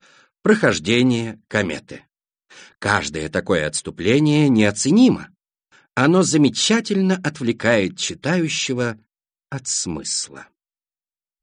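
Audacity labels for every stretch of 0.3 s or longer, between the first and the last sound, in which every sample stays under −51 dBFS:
2.040000	2.500000	silence
5.310000	5.720000	silence
9.020000	9.520000	silence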